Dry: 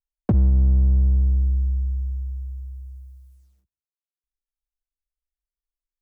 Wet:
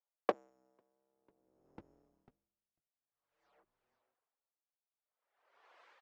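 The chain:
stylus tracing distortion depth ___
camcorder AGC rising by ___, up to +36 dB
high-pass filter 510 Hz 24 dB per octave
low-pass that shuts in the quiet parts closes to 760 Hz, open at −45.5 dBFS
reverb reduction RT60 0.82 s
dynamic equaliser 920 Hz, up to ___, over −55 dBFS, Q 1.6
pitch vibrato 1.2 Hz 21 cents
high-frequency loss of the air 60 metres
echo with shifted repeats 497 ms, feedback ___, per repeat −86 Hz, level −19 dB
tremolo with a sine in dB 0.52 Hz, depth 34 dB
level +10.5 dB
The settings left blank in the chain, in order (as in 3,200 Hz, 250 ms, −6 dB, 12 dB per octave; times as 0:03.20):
0.1 ms, 8.7 dB per second, −3 dB, 59%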